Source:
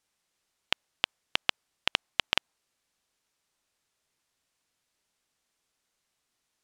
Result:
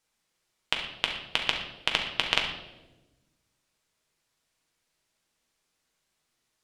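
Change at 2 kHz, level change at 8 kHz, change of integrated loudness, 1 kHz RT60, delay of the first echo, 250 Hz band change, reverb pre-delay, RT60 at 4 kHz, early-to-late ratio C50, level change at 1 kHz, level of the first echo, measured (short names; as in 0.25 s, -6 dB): +2.5 dB, +1.5 dB, +2.0 dB, 0.90 s, none, +3.5 dB, 6 ms, 0.80 s, 5.5 dB, +2.0 dB, none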